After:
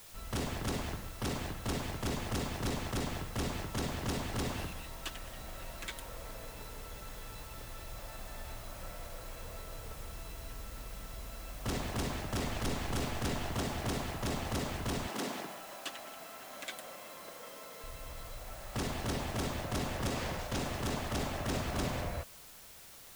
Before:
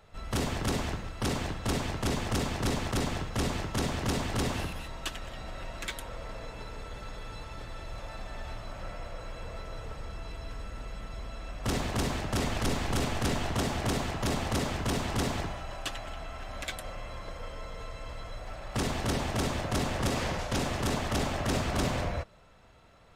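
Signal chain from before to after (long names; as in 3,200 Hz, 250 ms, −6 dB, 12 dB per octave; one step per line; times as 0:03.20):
0:15.08–0:17.84: high-pass filter 200 Hz 24 dB per octave
bit-depth reduction 8 bits, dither triangular
level −5.5 dB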